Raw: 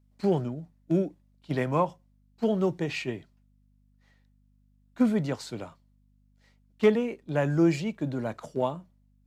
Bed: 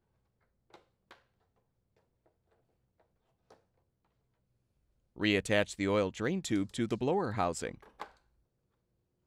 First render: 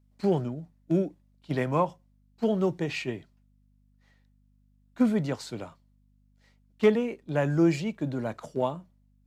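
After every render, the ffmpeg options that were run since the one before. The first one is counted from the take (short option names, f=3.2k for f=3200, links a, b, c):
-af anull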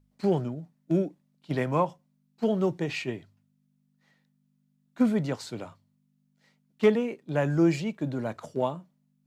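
-af "bandreject=f=50:t=h:w=4,bandreject=f=100:t=h:w=4"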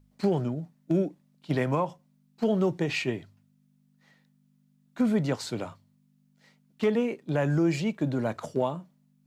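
-filter_complex "[0:a]asplit=2[a][b];[b]acompressor=threshold=-32dB:ratio=6,volume=-2.5dB[c];[a][c]amix=inputs=2:normalize=0,alimiter=limit=-16dB:level=0:latency=1:release=101"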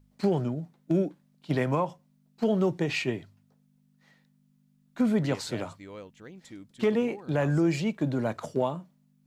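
-filter_complex "[1:a]volume=-14dB[a];[0:a][a]amix=inputs=2:normalize=0"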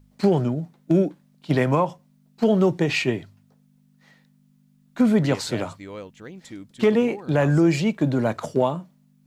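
-af "volume=6.5dB"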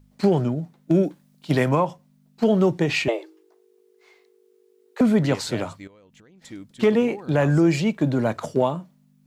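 -filter_complex "[0:a]asettb=1/sr,asplit=3[a][b][c];[a]atrim=end=1.034[d];[b]atrim=start=1.03:end=1.69,asetpts=PTS-STARTPTS,afade=t=in:d=0.004:c=qsin,afade=t=out:st=0.656:d=0.004:c=qsin,highshelf=f=4.7k:g=7[e];[c]atrim=start=1.686[f];[d][e]acrossfade=d=0.004:c1=hsin:c2=qsin[g];[g][f]acrossfade=d=0.004:c1=qsin:c2=hsin,asettb=1/sr,asplit=3[h][i][j];[h]atrim=end=3.084[k];[i]atrim=start=3.08:end=5.01,asetpts=PTS-STARTPTS,afade=t=in:d=0.004:c=qsin,afade=t=out:st=1.926:d=0.004:c=qsin,afreqshift=220[l];[j]atrim=start=5.006[m];[k][l]acrossfade=d=0.004:c1=hsin:c2=qsin[n];[n][m]acrossfade=d=0.004:c1=qsin:c2=hsin,asettb=1/sr,asplit=3[o][p][q];[o]atrim=end=5.874[r];[p]atrim=start=5.87:end=6.42,asetpts=PTS-STARTPTS,afade=t=in:d=0.004:c=qsin,afade=t=out:st=0.546:d=0.004:c=qsin,acompressor=threshold=-48dB:ratio=16:attack=3.2:release=140:knee=1:detection=peak[s];[q]atrim=start=6.416[t];[r][s]acrossfade=d=0.004:c1=hsin:c2=qsin[u];[u][t]acrossfade=d=0.004:c1=qsin:c2=hsin"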